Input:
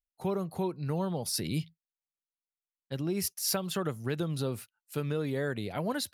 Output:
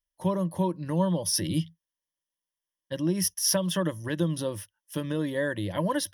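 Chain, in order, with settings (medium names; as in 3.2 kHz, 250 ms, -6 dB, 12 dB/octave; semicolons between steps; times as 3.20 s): rippled EQ curve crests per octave 1.2, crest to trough 14 dB; trim +2 dB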